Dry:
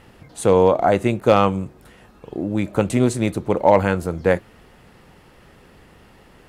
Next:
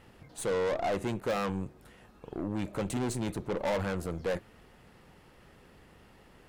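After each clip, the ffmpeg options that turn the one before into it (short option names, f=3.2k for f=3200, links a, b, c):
-af "asoftclip=type=tanh:threshold=-18dB,aeval=exprs='0.126*(cos(1*acos(clip(val(0)/0.126,-1,1)))-cos(1*PI/2))+0.0158*(cos(4*acos(clip(val(0)/0.126,-1,1)))-cos(4*PI/2))':c=same,volume=-8dB"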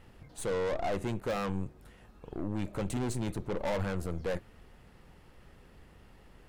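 -af "lowshelf=f=73:g=12,volume=-2.5dB"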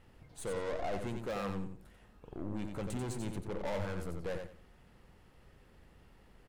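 -af "aecho=1:1:90|180|270:0.501|0.115|0.0265,volume=-5.5dB"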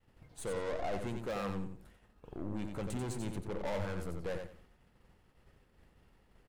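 -af "agate=range=-33dB:threshold=-54dB:ratio=3:detection=peak"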